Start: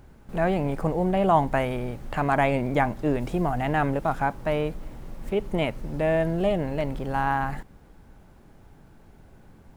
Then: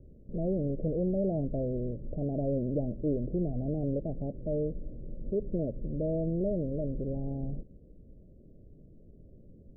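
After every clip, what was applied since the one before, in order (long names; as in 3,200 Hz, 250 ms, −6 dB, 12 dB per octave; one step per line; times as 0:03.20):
Butterworth low-pass 600 Hz 72 dB per octave
in parallel at +1 dB: brickwall limiter −24.5 dBFS, peak gain reduction 9.5 dB
on the sum: level −8.5 dB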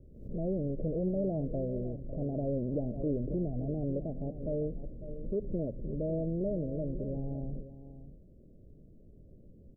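single-tap delay 551 ms −13 dB
background raised ahead of every attack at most 85 dB per second
level −2.5 dB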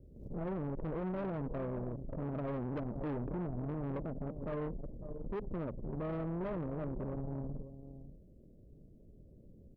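tube saturation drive 36 dB, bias 0.65
level +1.5 dB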